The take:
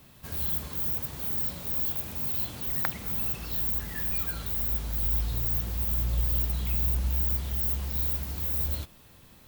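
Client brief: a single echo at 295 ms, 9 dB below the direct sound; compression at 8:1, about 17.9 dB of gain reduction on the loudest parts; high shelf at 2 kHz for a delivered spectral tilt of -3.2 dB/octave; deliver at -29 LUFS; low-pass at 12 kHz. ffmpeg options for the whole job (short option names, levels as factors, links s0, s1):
-af "lowpass=12000,highshelf=f=2000:g=4,acompressor=threshold=0.00708:ratio=8,aecho=1:1:295:0.355,volume=7.08"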